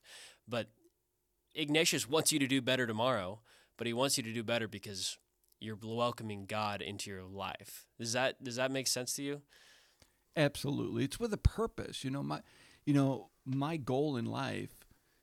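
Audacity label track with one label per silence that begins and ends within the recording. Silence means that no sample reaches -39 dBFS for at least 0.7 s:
0.630000	1.570000	silence
9.360000	10.370000	silence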